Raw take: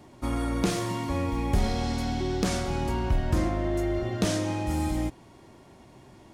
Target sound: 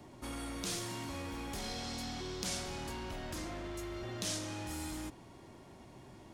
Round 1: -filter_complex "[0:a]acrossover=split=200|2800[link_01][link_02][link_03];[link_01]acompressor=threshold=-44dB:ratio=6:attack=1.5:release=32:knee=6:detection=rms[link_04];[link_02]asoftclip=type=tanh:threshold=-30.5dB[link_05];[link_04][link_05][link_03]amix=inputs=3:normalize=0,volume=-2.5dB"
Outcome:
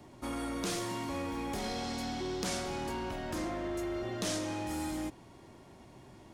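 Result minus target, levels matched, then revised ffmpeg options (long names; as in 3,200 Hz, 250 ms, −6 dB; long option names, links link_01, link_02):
soft clipping: distortion −6 dB
-filter_complex "[0:a]acrossover=split=200|2800[link_01][link_02][link_03];[link_01]acompressor=threshold=-44dB:ratio=6:attack=1.5:release=32:knee=6:detection=rms[link_04];[link_02]asoftclip=type=tanh:threshold=-40.5dB[link_05];[link_04][link_05][link_03]amix=inputs=3:normalize=0,volume=-2.5dB"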